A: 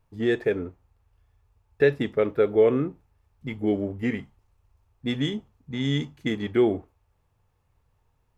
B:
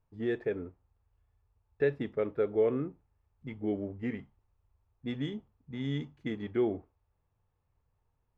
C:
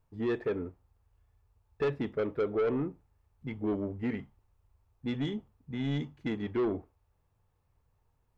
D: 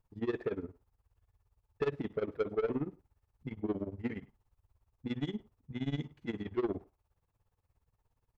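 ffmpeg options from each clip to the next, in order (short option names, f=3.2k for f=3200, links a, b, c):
-af "aemphasis=mode=reproduction:type=75fm,volume=-9dB"
-af "asoftclip=type=tanh:threshold=-28.5dB,volume=4dB"
-filter_complex "[0:a]tremolo=f=17:d=0.9,asplit=2[a][b];[b]adelay=100,highpass=300,lowpass=3.4k,asoftclip=type=hard:threshold=-33.5dB,volume=-22dB[c];[a][c]amix=inputs=2:normalize=0"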